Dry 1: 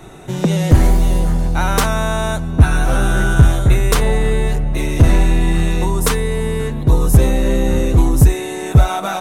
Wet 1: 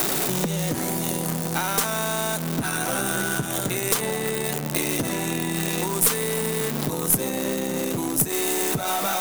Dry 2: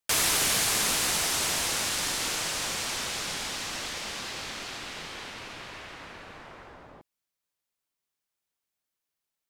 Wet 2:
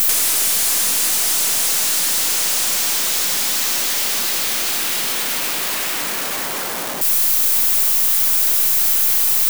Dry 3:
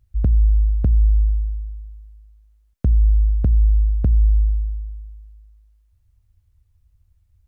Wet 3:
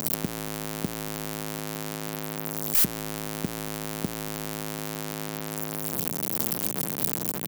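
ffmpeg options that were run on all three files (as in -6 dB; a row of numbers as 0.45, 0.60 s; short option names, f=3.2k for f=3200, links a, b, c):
-af "aeval=exprs='val(0)+0.5*0.119*sgn(val(0))':c=same,highpass=f=160:w=0.5412,highpass=f=160:w=1.3066,acompressor=threshold=-21dB:ratio=6,aemphasis=mode=production:type=50kf,aeval=exprs='1.06*(cos(1*acos(clip(val(0)/1.06,-1,1)))-cos(1*PI/2))+0.473*(cos(2*acos(clip(val(0)/1.06,-1,1)))-cos(2*PI/2))+0.0376*(cos(4*acos(clip(val(0)/1.06,-1,1)))-cos(4*PI/2))':c=same,volume=-2.5dB"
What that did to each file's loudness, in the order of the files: -8.0, +12.5, -9.5 LU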